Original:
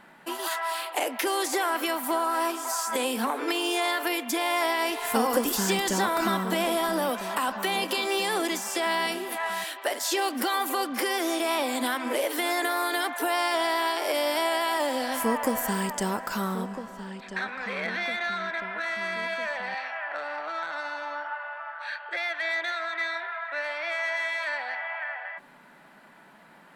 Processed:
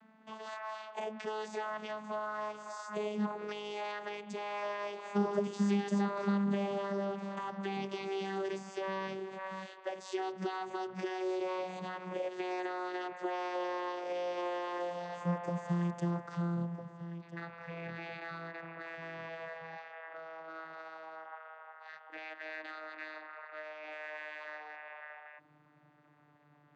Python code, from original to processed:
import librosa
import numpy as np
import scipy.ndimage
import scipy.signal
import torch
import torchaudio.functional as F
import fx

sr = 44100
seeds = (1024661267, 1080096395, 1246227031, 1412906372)

y = fx.vocoder_glide(x, sr, note=57, semitones=-7)
y = y * 10.0 ** (-8.5 / 20.0)